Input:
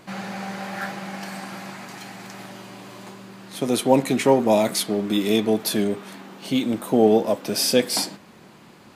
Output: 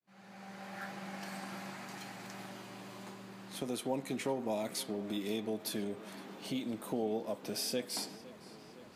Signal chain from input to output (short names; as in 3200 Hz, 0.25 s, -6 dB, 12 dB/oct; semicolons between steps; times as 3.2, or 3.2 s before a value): opening faded in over 1.36 s; compressor 2:1, threshold -31 dBFS, peak gain reduction 11.5 dB; tape echo 0.512 s, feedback 79%, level -17 dB, low-pass 4900 Hz; gain -8.5 dB